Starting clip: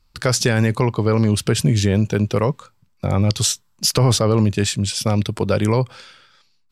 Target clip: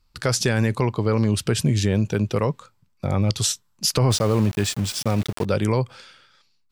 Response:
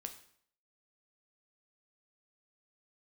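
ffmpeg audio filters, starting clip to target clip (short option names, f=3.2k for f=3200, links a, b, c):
-filter_complex "[0:a]asettb=1/sr,asplit=3[a][b][c];[a]atrim=end=4.104[d];[b]atrim=start=4.1:end=5.45,asetpts=PTS-STARTPTS,afade=t=in:d=0.004:c=qsin,afade=t=out:st=1.346:d=0.004:c=qsin,aeval=exprs='val(0)*gte(abs(val(0)),0.0473)':c=same[e];[c]atrim=start=5.446[f];[d][e]acrossfade=d=0.004:c1=hsin:c2=qsin[g];[g][f]acrossfade=d=0.004:c1=qsin:c2=hsin,volume=-3.5dB"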